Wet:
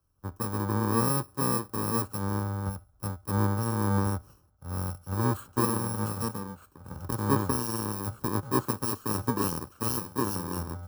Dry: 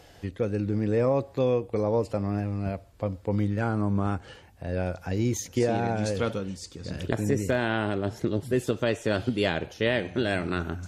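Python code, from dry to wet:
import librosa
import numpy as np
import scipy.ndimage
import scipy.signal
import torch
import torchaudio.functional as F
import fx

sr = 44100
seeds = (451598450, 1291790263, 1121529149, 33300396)

y = fx.bit_reversed(x, sr, seeds[0], block=64)
y = fx.high_shelf_res(y, sr, hz=1700.0, db=-8.5, q=3.0)
y = fx.band_widen(y, sr, depth_pct=70)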